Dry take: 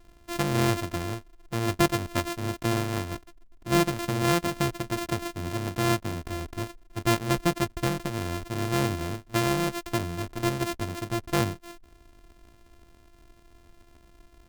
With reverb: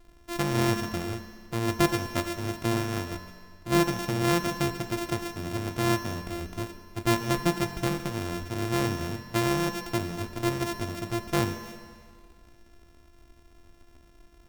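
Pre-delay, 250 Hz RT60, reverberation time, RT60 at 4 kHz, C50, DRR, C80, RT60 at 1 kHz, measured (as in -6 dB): 10 ms, 1.9 s, 1.9 s, 1.9 s, 8.5 dB, 7.0 dB, 9.5 dB, 1.9 s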